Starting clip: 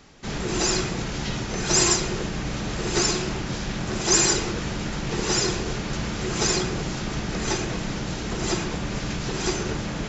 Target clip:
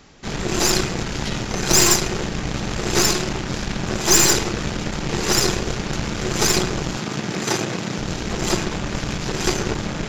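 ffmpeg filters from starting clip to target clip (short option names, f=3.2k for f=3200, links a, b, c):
-filter_complex "[0:a]aeval=exprs='0.562*(cos(1*acos(clip(val(0)/0.562,-1,1)))-cos(1*PI/2))+0.178*(cos(5*acos(clip(val(0)/0.562,-1,1)))-cos(5*PI/2))+0.112*(cos(7*acos(clip(val(0)/0.562,-1,1)))-cos(7*PI/2))+0.0891*(cos(8*acos(clip(val(0)/0.562,-1,1)))-cos(8*PI/2))':c=same,asettb=1/sr,asplit=3[a][b][c];[a]atrim=end=6.974[d];[b]atrim=start=6.97:end=7.99,asetpts=PTS-STARTPTS,afade=t=in:d=0.004:c=qsin,afade=t=out:st=1.016:d=0.004:c=qsin,highpass=f=110:w=0.5412,highpass=f=110:w=1.3066[e];[c]atrim=start=7.986[f];[d][e]acrossfade=d=0.004:c1=hsin:c2=qsin[g];[g][f]acrossfade=d=0.004:c1=qsin:c2=hsin,volume=1dB"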